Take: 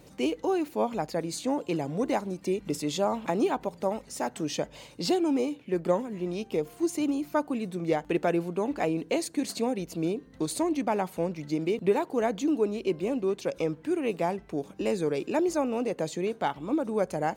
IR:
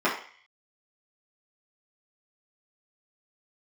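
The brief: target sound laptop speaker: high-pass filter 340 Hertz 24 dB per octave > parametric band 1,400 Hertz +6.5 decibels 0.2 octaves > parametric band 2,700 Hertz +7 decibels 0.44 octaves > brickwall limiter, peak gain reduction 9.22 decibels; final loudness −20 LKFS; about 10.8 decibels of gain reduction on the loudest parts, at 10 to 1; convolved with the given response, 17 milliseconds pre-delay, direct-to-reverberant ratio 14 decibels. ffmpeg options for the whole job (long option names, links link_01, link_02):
-filter_complex "[0:a]acompressor=threshold=-31dB:ratio=10,asplit=2[link_01][link_02];[1:a]atrim=start_sample=2205,adelay=17[link_03];[link_02][link_03]afir=irnorm=-1:irlink=0,volume=-29.5dB[link_04];[link_01][link_04]amix=inputs=2:normalize=0,highpass=frequency=340:width=0.5412,highpass=frequency=340:width=1.3066,equalizer=frequency=1400:width_type=o:width=0.2:gain=6.5,equalizer=frequency=2700:width_type=o:width=0.44:gain=7,volume=19.5dB,alimiter=limit=-9dB:level=0:latency=1"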